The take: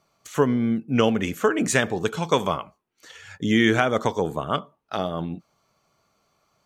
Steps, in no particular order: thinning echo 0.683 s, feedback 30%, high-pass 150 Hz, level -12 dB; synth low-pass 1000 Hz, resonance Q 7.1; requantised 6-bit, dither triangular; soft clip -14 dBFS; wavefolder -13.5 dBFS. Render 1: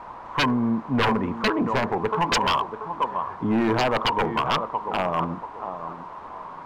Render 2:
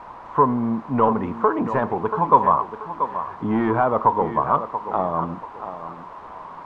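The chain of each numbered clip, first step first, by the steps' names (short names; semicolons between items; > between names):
thinning echo > requantised > synth low-pass > wavefolder > soft clip; requantised > thinning echo > soft clip > wavefolder > synth low-pass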